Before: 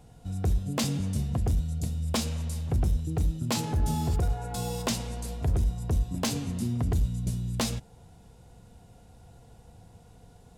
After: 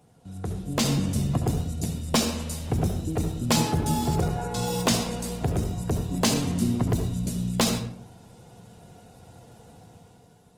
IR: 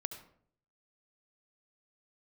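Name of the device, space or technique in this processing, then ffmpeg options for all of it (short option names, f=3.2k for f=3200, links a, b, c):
far-field microphone of a smart speaker: -filter_complex "[0:a]asettb=1/sr,asplit=3[a][b][c];[a]atrim=end=4.214[d];[b]atrim=start=4.21:end=4.67,asetpts=PTS-STARTPTS,afade=t=in:d=0.004:c=qsin,afade=t=out:st=0.456:d=0.004:c=qsin,acrossover=split=8100[e][f];[f]acompressor=threshold=-53dB:ratio=4:attack=1:release=60[g];[e][g]amix=inputs=2:normalize=0[h];[c]atrim=start=4.666[i];[d][h]acrossfade=d=0.004:c1=hsin:c2=qsin[j];[j][i]acrossfade=d=0.004:c1=qsin:c2=hsin[k];[1:a]atrim=start_sample=2205[l];[k][l]afir=irnorm=-1:irlink=0,highpass=130,dynaudnorm=f=130:g=11:m=8dB" -ar 48000 -c:a libopus -b:a 20k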